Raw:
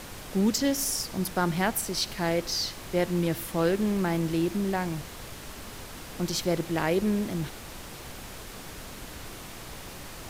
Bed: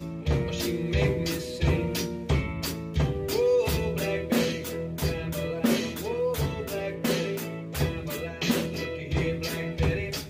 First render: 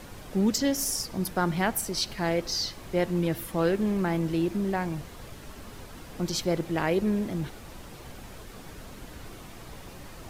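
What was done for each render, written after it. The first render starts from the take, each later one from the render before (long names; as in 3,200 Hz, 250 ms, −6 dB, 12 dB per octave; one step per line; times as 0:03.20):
broadband denoise 7 dB, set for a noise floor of −43 dBFS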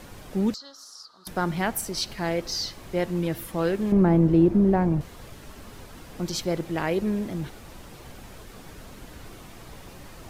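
0:00.54–0:01.27: pair of resonant band-passes 2,300 Hz, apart 1.7 octaves
0:03.92–0:05.01: tilt shelving filter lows +10 dB, about 1,300 Hz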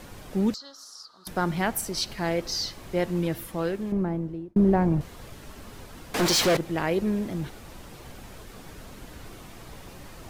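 0:03.23–0:04.56: fade out
0:06.14–0:06.57: mid-hump overdrive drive 30 dB, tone 6,800 Hz, clips at −14 dBFS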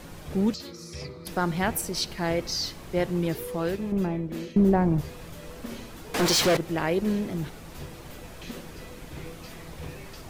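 mix in bed −15 dB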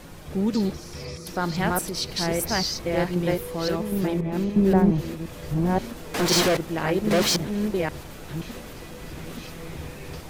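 delay that plays each chunk backwards 526 ms, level 0 dB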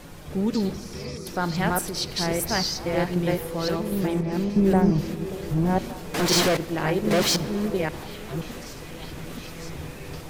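echo through a band-pass that steps 584 ms, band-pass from 370 Hz, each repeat 1.4 octaves, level −11 dB
rectangular room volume 3,800 cubic metres, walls mixed, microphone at 0.35 metres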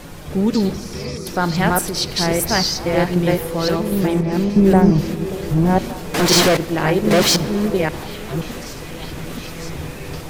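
level +7 dB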